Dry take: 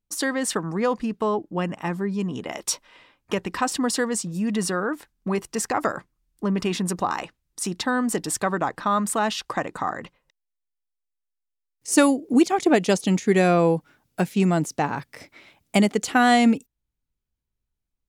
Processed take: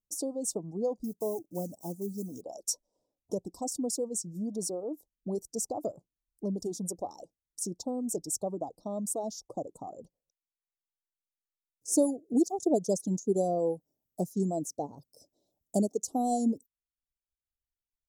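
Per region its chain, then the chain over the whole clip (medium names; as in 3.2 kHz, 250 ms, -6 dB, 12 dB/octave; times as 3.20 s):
1.04–2.42 s: block-companded coder 5-bit + treble shelf 8.6 kHz +10 dB
whole clip: reverb removal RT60 1.4 s; elliptic band-stop 650–5900 Hz, stop band 70 dB; bass shelf 200 Hz -7.5 dB; trim -4.5 dB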